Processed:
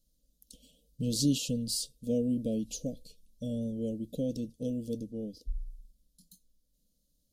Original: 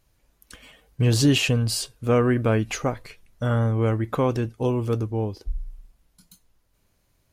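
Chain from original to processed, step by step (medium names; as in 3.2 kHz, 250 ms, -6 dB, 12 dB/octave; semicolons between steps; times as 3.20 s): inverse Chebyshev band-stop 880–2000 Hz, stop band 50 dB; static phaser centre 380 Hz, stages 6; trim -5 dB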